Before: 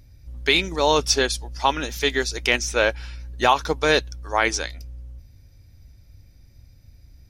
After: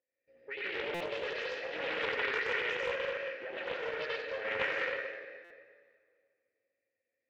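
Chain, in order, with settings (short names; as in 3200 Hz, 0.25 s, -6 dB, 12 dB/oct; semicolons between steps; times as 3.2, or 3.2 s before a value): spectral delay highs late, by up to 0.123 s; gate -40 dBFS, range -21 dB; low shelf 470 Hz +3.5 dB; negative-ratio compressor -26 dBFS, ratio -1; vowel filter e; soft clip -34.5 dBFS, distortion -12 dB; speaker cabinet 370–4200 Hz, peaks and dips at 1200 Hz +7 dB, 2000 Hz +7 dB, 3500 Hz -6 dB; echo with dull and thin repeats by turns 0.173 s, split 2400 Hz, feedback 52%, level -12 dB; reverb RT60 2.0 s, pre-delay 82 ms, DRR -6 dB; stuck buffer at 0.94/5.44, samples 256, times 10; Doppler distortion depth 0.28 ms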